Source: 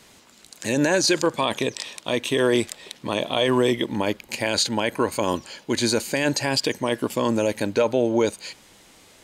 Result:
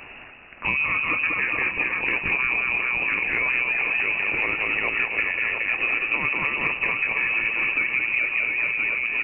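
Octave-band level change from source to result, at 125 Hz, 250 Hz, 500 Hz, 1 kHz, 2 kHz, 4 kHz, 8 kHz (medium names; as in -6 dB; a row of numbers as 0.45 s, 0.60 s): -11.0 dB, -15.5 dB, -15.5 dB, -3.5 dB, +10.5 dB, -11.5 dB, under -40 dB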